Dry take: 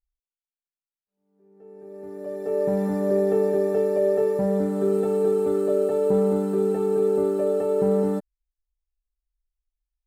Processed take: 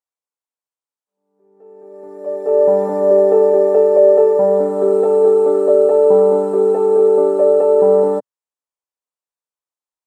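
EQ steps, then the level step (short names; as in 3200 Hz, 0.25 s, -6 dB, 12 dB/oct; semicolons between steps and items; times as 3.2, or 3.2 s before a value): weighting filter A; dynamic EQ 580 Hz, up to +7 dB, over -38 dBFS, Q 0.86; graphic EQ 125/250/500/1000/8000 Hz +12/+9/+11/+12/+9 dB; -5.5 dB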